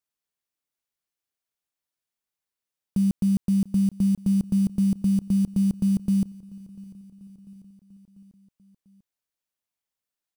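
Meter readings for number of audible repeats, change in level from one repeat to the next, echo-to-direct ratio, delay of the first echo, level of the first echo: 3, −4.5 dB, −20.5 dB, 694 ms, −22.0 dB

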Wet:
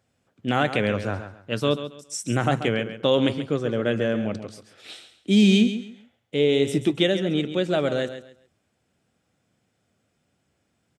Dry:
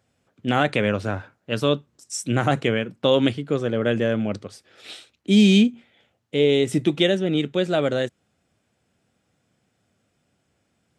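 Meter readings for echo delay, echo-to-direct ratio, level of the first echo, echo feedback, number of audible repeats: 136 ms, −10.5 dB, −11.0 dB, 25%, 2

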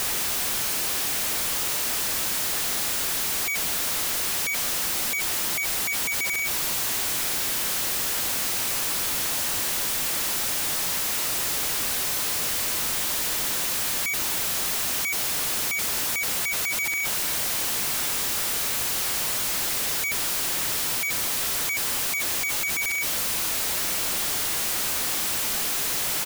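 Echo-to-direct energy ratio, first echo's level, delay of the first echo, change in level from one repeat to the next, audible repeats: −21.5 dB, −22.0 dB, 1,093 ms, −11.5 dB, 1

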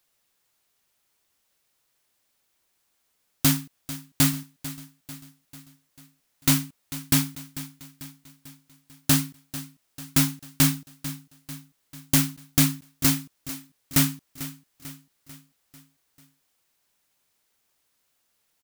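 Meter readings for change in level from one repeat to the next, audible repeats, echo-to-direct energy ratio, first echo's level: −5.5 dB, 4, −13.5 dB, −15.0 dB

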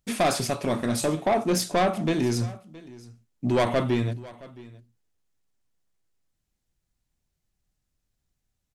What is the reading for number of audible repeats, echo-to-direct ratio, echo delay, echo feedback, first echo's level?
1, −20.5 dB, 669 ms, repeats not evenly spaced, −20.5 dB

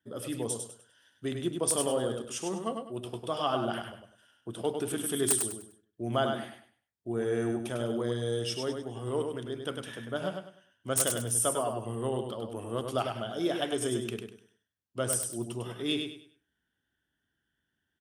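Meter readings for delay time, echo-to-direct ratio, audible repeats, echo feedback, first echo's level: 100 ms, −5.0 dB, 3, 29%, −5.5 dB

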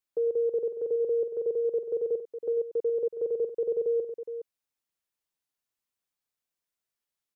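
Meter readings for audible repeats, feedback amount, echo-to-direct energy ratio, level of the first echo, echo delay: 2, repeats not evenly spaced, −8.0 dB, −13.0 dB, 97 ms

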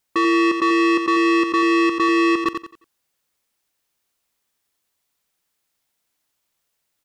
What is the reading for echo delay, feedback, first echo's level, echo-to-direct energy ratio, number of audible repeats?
89 ms, 32%, −7.0 dB, −6.5 dB, 3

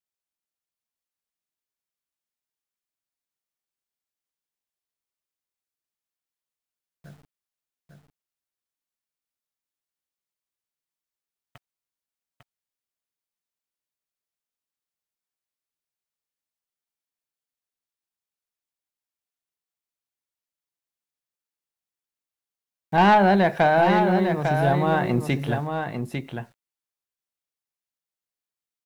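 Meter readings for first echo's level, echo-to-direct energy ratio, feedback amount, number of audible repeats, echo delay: −6.0 dB, −6.0 dB, repeats not evenly spaced, 1, 850 ms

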